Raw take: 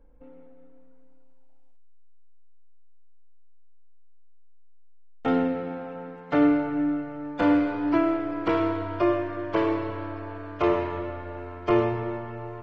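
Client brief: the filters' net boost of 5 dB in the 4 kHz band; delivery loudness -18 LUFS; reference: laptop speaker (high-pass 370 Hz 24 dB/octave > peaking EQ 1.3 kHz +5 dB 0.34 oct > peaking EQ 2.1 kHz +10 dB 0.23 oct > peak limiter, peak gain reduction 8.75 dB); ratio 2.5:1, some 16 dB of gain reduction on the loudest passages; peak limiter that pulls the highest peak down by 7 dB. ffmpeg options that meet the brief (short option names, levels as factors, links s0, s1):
-af "equalizer=f=4000:t=o:g=6.5,acompressor=threshold=0.00794:ratio=2.5,alimiter=level_in=2.24:limit=0.0631:level=0:latency=1,volume=0.447,highpass=f=370:w=0.5412,highpass=f=370:w=1.3066,equalizer=f=1300:t=o:w=0.34:g=5,equalizer=f=2100:t=o:w=0.23:g=10,volume=22.4,alimiter=limit=0.355:level=0:latency=1"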